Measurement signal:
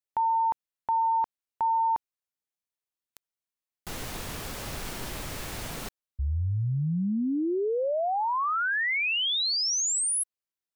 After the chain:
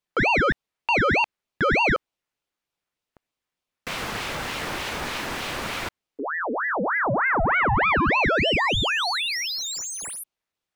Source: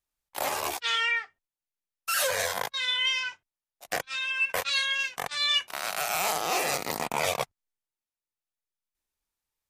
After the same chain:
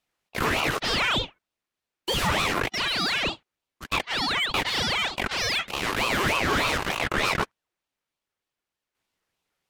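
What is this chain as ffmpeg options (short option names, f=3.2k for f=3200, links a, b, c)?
-filter_complex "[0:a]asplit=2[a][b];[b]highpass=f=720:p=1,volume=23dB,asoftclip=type=tanh:threshold=-12.5dB[c];[a][c]amix=inputs=2:normalize=0,lowpass=f=1.4k:p=1,volume=-6dB,aeval=exprs='val(0)*sin(2*PI*1100*n/s+1100*0.7/3.3*sin(2*PI*3.3*n/s))':c=same,volume=2.5dB"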